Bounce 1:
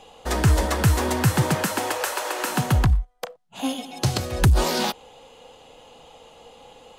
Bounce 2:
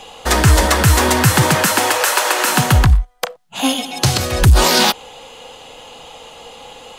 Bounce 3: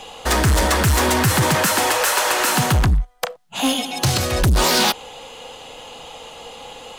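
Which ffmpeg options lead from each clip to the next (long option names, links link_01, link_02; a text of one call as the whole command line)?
ffmpeg -i in.wav -filter_complex "[0:a]acrossover=split=990[link_01][link_02];[link_02]acontrast=45[link_03];[link_01][link_03]amix=inputs=2:normalize=0,alimiter=level_in=9dB:limit=-1dB:release=50:level=0:latency=1,volume=-1dB" out.wav
ffmpeg -i in.wav -af "asoftclip=type=tanh:threshold=-12dB" out.wav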